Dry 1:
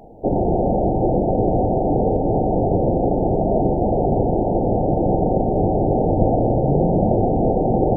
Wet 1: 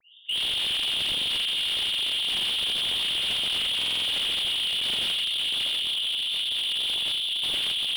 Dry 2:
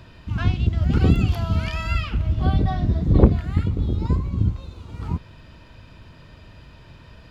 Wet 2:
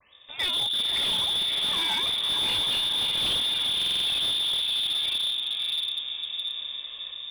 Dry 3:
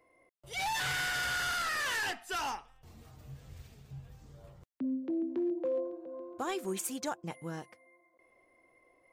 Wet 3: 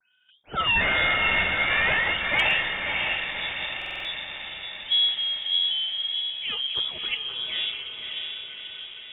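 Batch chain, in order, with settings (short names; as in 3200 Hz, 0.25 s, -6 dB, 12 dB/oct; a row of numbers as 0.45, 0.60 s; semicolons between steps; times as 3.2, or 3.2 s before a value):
notches 60/120/180/240/300/360/420 Hz; in parallel at -0.5 dB: compressor 6:1, threshold -27 dBFS; on the sum: dispersion lows, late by 0.127 s, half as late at 570 Hz; random-step tremolo, depth 75%; diffused feedback echo 0.593 s, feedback 59%, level -3.5 dB; inverted band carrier 3600 Hz; stuck buffer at 3.77, samples 2048, times 5; slew limiter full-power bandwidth 260 Hz; match loudness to -24 LUFS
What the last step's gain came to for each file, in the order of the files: -3.5, -2.0, +6.5 dB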